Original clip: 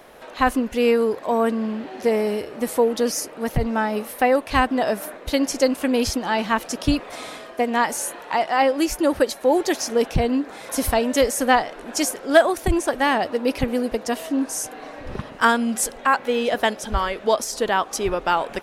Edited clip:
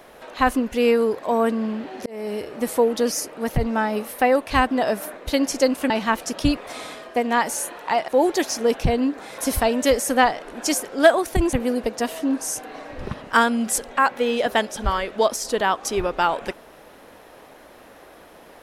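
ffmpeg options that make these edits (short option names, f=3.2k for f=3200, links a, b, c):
-filter_complex "[0:a]asplit=5[a][b][c][d][e];[a]atrim=end=2.06,asetpts=PTS-STARTPTS,afade=t=out:st=2.056:d=0.004:c=hsin[f];[b]atrim=start=2.06:end=5.902,asetpts=PTS-STARTPTS,afade=t=in:d=0.41[g];[c]atrim=start=6.328:end=8.512[h];[d]atrim=start=9.388:end=12.842[i];[e]atrim=start=13.608[j];[f][g]concat=n=2:v=0:a=1[k];[k][h]acrossfade=d=0.004:c1=hsin:c2=hsin[l];[l][i]acrossfade=d=0.004:c1=hsin:c2=hsin[m];[m][j]acrossfade=d=0.004:c1=hsin:c2=hsin"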